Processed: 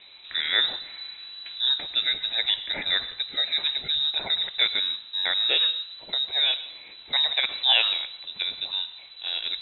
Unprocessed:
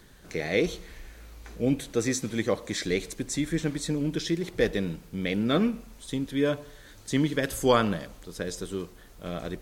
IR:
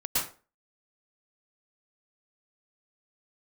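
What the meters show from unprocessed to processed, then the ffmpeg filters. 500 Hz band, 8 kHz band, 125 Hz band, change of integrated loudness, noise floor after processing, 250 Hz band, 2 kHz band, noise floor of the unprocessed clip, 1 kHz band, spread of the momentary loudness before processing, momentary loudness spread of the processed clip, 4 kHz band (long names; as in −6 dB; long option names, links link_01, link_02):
−15.0 dB, below −35 dB, below −20 dB, +5.0 dB, −46 dBFS, −25.0 dB, +5.0 dB, −51 dBFS, −4.0 dB, 17 LU, 14 LU, +18.0 dB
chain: -filter_complex "[0:a]lowpass=frequency=3400:width_type=q:width=0.5098,lowpass=frequency=3400:width_type=q:width=0.6013,lowpass=frequency=3400:width_type=q:width=0.9,lowpass=frequency=3400:width_type=q:width=2.563,afreqshift=-4000,asplit=2[link_01][link_02];[1:a]atrim=start_sample=2205,lowshelf=frequency=130:gain=10.5[link_03];[link_02][link_03]afir=irnorm=-1:irlink=0,volume=-24dB[link_04];[link_01][link_04]amix=inputs=2:normalize=0,acrossover=split=3100[link_05][link_06];[link_06]acompressor=threshold=-30dB:ratio=4:attack=1:release=60[link_07];[link_05][link_07]amix=inputs=2:normalize=0,volume=4.5dB"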